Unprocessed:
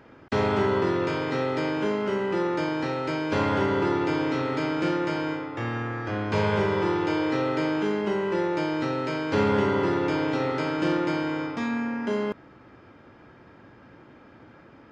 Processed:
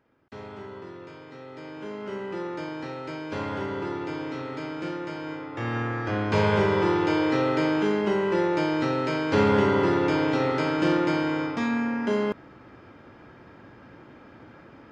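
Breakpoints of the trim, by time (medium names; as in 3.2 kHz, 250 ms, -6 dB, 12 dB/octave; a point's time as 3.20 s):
1.40 s -17 dB
2.15 s -7 dB
5.20 s -7 dB
5.78 s +2 dB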